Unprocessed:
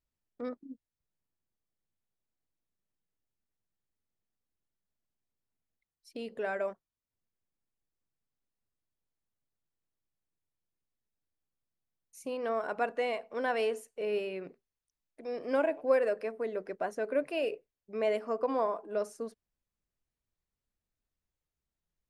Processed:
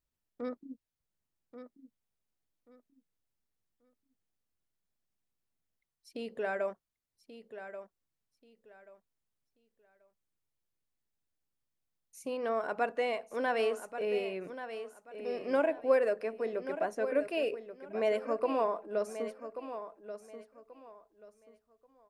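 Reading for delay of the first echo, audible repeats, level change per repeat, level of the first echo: 1,134 ms, 2, −12.0 dB, −11.0 dB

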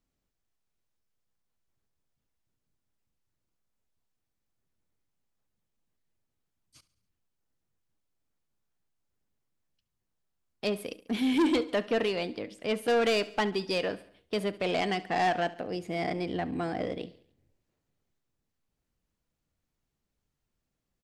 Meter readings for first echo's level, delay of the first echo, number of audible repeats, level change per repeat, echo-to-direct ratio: −18.5 dB, 70 ms, 3, −5.5 dB, −17.0 dB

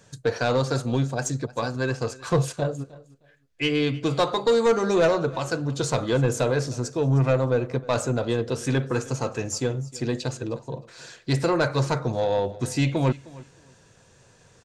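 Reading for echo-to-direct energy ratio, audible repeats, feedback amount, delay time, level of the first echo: −20.5 dB, 2, 19%, 310 ms, −20.5 dB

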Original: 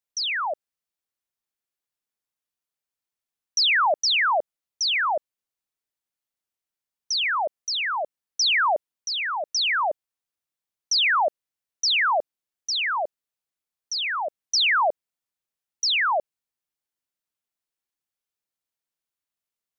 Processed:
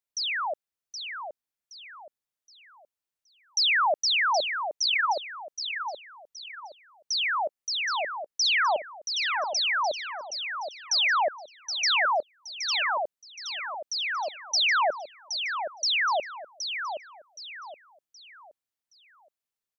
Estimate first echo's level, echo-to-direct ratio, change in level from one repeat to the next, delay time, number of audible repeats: −7.5 dB, −7.0 dB, −9.0 dB, 771 ms, 4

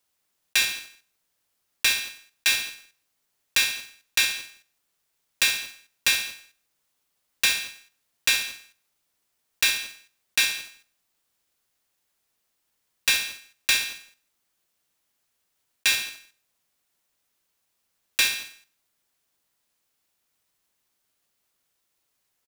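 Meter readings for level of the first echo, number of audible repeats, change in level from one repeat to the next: −24.0 dB, 1, repeats not evenly spaced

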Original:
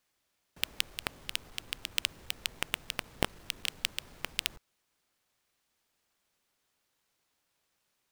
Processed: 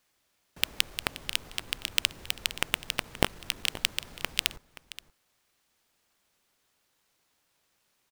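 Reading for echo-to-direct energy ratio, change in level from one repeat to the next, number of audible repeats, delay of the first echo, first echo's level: −16.5 dB, repeats not evenly spaced, 1, 526 ms, −16.5 dB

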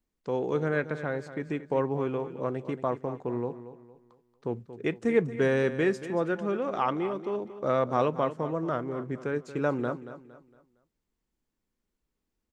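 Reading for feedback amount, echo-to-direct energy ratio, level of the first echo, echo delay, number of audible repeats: 36%, −12.5 dB, −13.0 dB, 230 ms, 3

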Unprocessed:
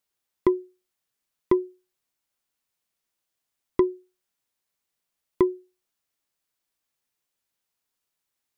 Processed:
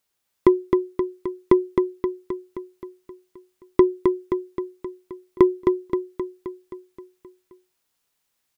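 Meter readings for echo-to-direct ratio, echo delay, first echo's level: −2.5 dB, 263 ms, −4.5 dB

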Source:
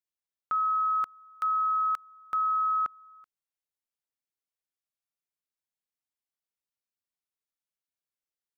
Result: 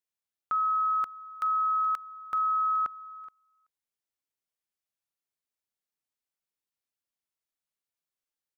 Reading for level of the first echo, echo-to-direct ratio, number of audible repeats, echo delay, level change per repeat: −17.5 dB, −17.5 dB, 1, 424 ms, repeats not evenly spaced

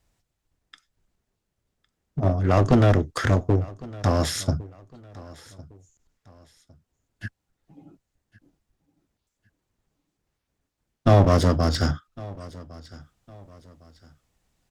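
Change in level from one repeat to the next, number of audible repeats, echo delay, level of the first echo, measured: −9.5 dB, 2, 1,107 ms, −21.0 dB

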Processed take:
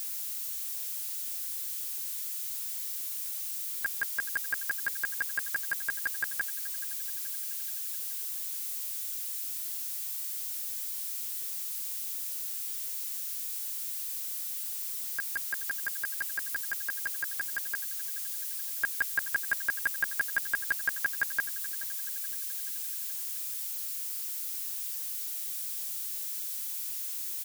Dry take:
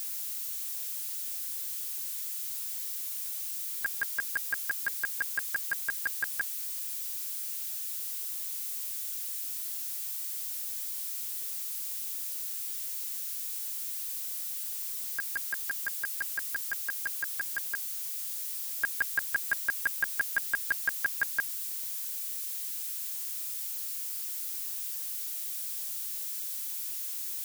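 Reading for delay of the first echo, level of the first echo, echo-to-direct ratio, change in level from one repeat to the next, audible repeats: 428 ms, −16.0 dB, −14.5 dB, −5.5 dB, 4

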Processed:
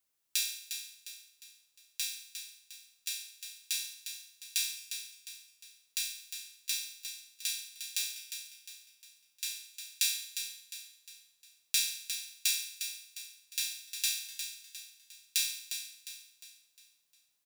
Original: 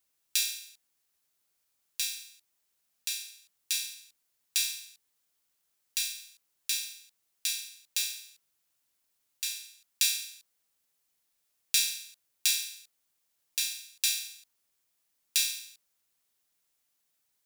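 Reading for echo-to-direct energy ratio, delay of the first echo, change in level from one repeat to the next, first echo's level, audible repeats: −7.5 dB, 355 ms, −7.5 dB, −8.5 dB, 4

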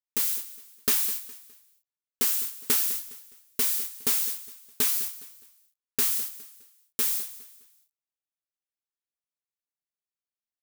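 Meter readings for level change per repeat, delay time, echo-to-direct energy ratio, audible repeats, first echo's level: −9.5 dB, 206 ms, −15.5 dB, 3, −16.0 dB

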